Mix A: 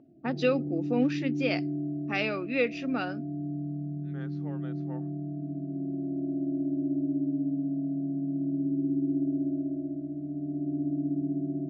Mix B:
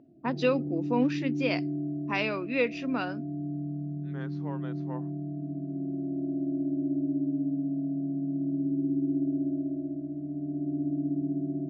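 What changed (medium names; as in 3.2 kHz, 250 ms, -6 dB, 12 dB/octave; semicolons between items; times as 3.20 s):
second voice +3.5 dB; master: remove Butterworth band-stop 1 kHz, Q 5.6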